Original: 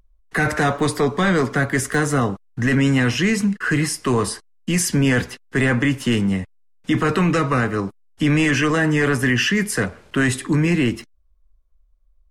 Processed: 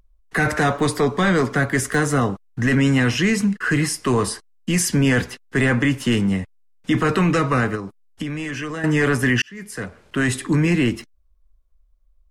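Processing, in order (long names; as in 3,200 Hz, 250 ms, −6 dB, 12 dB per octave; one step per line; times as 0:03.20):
0:07.75–0:08.84: downward compressor 6 to 1, threshold −26 dBFS, peak gain reduction 11.5 dB
0:09.42–0:10.42: fade in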